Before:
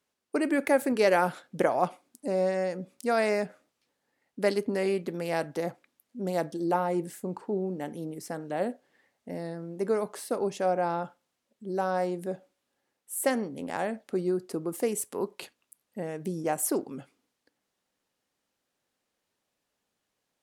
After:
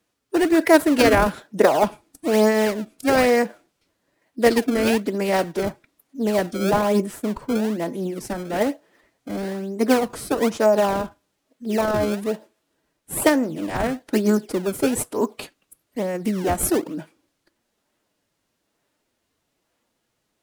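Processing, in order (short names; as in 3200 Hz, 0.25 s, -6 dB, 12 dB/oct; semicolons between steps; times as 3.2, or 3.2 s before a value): in parallel at -6 dB: decimation with a swept rate 31×, swing 160% 1.1 Hz; on the sum: formant-preserving pitch shift +2.5 st; gain +6.5 dB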